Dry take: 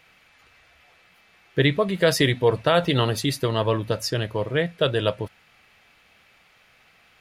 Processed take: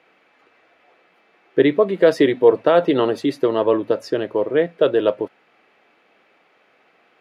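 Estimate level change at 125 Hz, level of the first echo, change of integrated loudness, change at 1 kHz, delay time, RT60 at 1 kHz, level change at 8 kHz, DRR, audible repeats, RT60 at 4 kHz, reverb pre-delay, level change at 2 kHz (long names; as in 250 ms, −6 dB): −9.5 dB, no echo audible, +4.5 dB, +2.5 dB, no echo audible, no reverb audible, below −10 dB, no reverb audible, no echo audible, no reverb audible, no reverb audible, −1.5 dB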